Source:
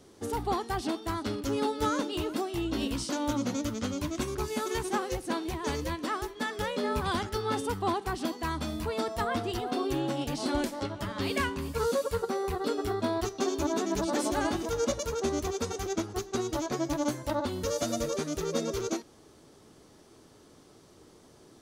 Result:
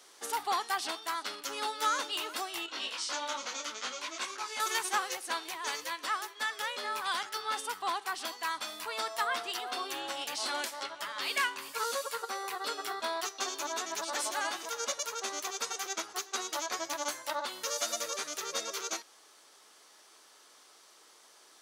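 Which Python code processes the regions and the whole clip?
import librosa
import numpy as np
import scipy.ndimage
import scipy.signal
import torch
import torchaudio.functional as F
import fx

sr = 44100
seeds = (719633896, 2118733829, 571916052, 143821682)

y = fx.chain(x, sr, fx.lowpass(hz=6500.0, slope=12),
    fx.low_shelf(hz=170.0, db=-11.0),
    fx.detune_double(cents=22), at=(2.66, 4.6))
y = scipy.signal.sosfilt(scipy.signal.butter(2, 1100.0, 'highpass', fs=sr, output='sos'), y)
y = fx.rider(y, sr, range_db=10, speed_s=2.0)
y = y * 10.0 ** (3.5 / 20.0)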